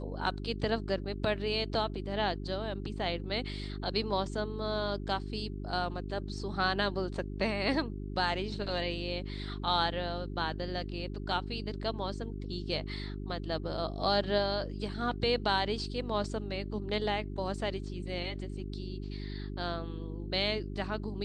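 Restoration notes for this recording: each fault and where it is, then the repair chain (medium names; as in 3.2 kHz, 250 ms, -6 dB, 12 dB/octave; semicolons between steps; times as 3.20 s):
hum 50 Hz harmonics 8 -39 dBFS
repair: de-hum 50 Hz, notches 8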